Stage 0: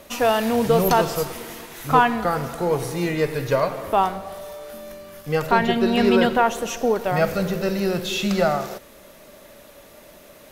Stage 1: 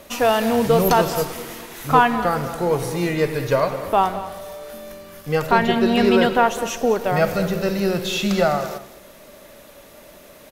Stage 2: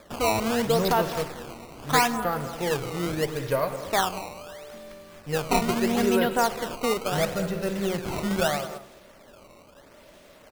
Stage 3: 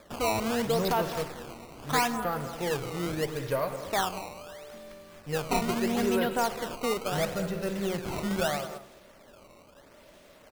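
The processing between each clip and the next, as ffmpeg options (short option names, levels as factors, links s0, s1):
-af "aecho=1:1:206:0.188,volume=1.19"
-af "acrusher=samples=15:mix=1:aa=0.000001:lfo=1:lforange=24:lforate=0.76,volume=0.473"
-af "asoftclip=type=tanh:threshold=0.188,volume=0.708"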